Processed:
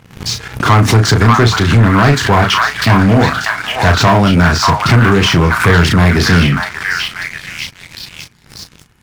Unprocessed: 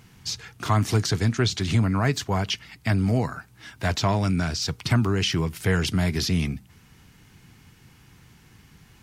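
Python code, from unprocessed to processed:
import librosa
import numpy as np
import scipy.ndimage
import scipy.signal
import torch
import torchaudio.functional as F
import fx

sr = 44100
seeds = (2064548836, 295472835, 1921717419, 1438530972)

p1 = fx.rider(x, sr, range_db=3, speed_s=0.5)
p2 = x + (p1 * 10.0 ** (-1.0 / 20.0))
p3 = fx.high_shelf(p2, sr, hz=2800.0, db=-9.0)
p4 = fx.doubler(p3, sr, ms=35.0, db=-6)
p5 = fx.dynamic_eq(p4, sr, hz=1300.0, q=0.86, threshold_db=-37.0, ratio=4.0, max_db=5)
p6 = p5 + fx.echo_stepped(p5, sr, ms=589, hz=1300.0, octaves=0.7, feedback_pct=70, wet_db=-0.5, dry=0)
p7 = fx.leveller(p6, sr, passes=3)
p8 = fx.pre_swell(p7, sr, db_per_s=130.0)
y = p8 * 10.0 ** (-1.0 / 20.0)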